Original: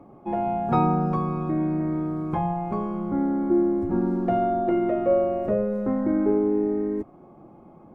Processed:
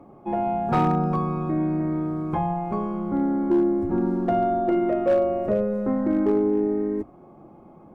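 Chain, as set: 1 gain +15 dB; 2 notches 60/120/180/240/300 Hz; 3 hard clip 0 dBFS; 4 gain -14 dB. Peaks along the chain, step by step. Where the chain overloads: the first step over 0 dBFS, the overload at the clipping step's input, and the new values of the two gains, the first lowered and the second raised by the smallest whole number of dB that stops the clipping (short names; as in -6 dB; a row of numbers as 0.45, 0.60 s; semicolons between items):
+7.5, +7.5, 0.0, -14.0 dBFS; step 1, 7.5 dB; step 1 +7 dB, step 4 -6 dB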